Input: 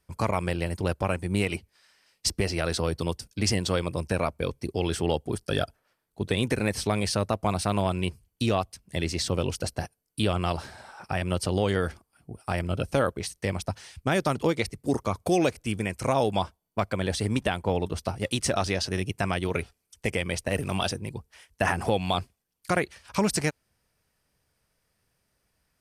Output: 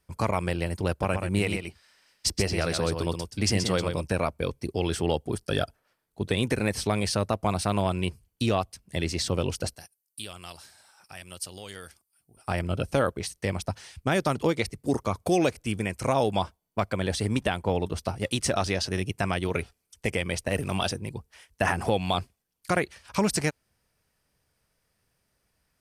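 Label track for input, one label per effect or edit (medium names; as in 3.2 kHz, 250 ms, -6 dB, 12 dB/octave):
0.900000	4.060000	delay 128 ms -6.5 dB
9.750000	12.370000	pre-emphasis filter coefficient 0.9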